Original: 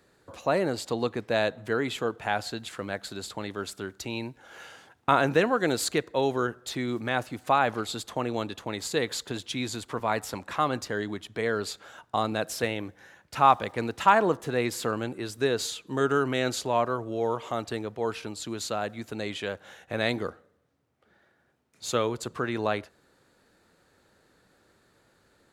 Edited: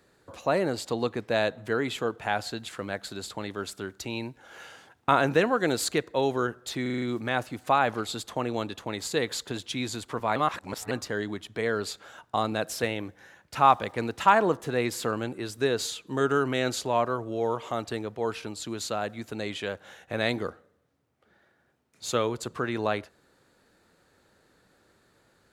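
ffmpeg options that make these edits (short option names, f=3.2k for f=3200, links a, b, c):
-filter_complex "[0:a]asplit=8[a][b][c][d][e][f][g][h];[a]atrim=end=6.862[i];[b]atrim=start=6.818:end=6.862[j];[c]atrim=start=6.818:end=6.862[k];[d]atrim=start=6.818:end=6.862[l];[e]atrim=start=6.818:end=6.862[m];[f]atrim=start=6.818:end=10.162[n];[g]atrim=start=10.158:end=10.712,asetpts=PTS-STARTPTS,areverse[o];[h]atrim=start=10.708[p];[i][j]acrossfade=d=0.004:c1=hsin:c2=hsin[q];[q][k]acrossfade=d=0.004:c1=hsin:c2=hsin[r];[r][l]acrossfade=d=0.004:c1=hsin:c2=hsin[s];[s][m]acrossfade=d=0.004:c1=hsin:c2=hsin[t];[t][n]acrossfade=d=0.004:c1=hsin:c2=hsin[u];[u][o]acrossfade=d=0.004:c1=hsin:c2=hsin[v];[v][p]acrossfade=d=0.004:c1=hsin:c2=hsin"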